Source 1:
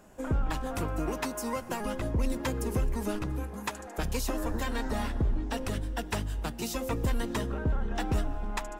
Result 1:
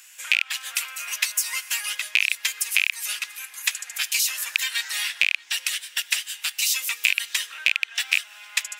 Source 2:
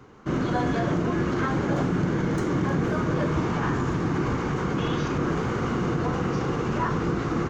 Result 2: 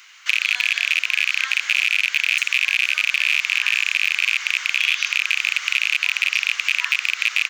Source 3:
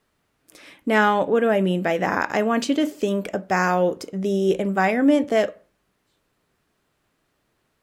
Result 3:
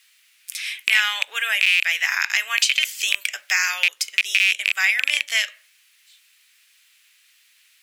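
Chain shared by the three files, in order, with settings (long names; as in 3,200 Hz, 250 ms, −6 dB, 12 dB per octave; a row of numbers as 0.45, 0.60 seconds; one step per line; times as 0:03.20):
loose part that buzzes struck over −25 dBFS, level −15 dBFS
Chebyshev high-pass filter 2,300 Hz, order 3
downward compressor 2 to 1, threshold −40 dBFS
normalise the peak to −1.5 dBFS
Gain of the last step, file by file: +19.5, +20.0, +19.5 decibels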